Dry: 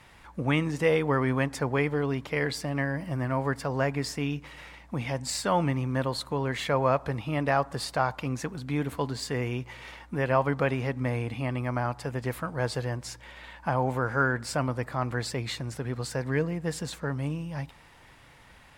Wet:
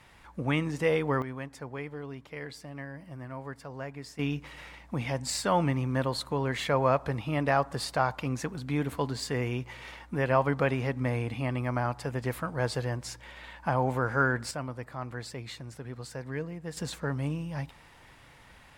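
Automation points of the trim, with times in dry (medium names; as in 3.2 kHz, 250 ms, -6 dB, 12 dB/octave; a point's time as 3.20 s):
-2.5 dB
from 1.22 s -12 dB
from 4.19 s -0.5 dB
from 14.51 s -8 dB
from 16.77 s -0.5 dB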